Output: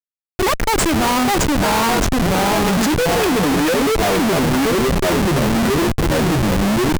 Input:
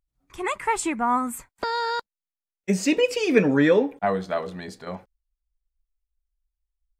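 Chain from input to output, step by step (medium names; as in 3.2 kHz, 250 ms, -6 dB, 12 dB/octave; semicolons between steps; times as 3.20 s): ever faster or slower copies 519 ms, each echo -2 st, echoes 3; Schmitt trigger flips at -28.5 dBFS; wow and flutter 23 cents; trim +7 dB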